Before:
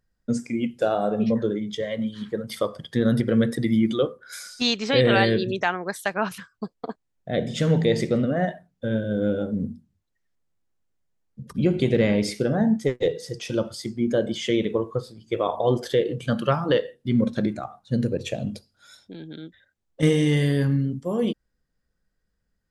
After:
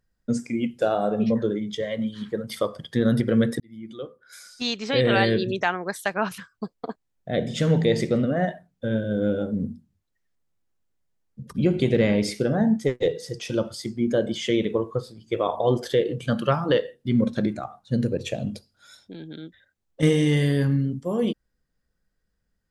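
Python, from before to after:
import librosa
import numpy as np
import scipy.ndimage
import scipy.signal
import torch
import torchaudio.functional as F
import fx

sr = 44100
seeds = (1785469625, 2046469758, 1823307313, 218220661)

y = fx.edit(x, sr, fx.fade_in_span(start_s=3.6, length_s=1.81), tone=tone)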